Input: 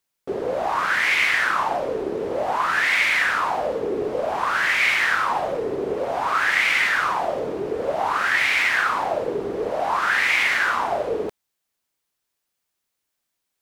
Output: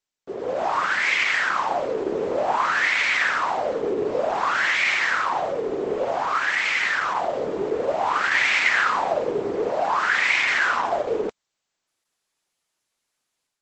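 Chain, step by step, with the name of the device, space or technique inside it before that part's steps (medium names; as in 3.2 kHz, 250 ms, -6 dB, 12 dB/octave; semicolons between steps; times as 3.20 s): 7.83–8.23 s: dynamic bell 1.5 kHz, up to -3 dB, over -40 dBFS, Q 3.9; video call (high-pass 150 Hz 6 dB/octave; level rider gain up to 10 dB; trim -6 dB; Opus 12 kbps 48 kHz)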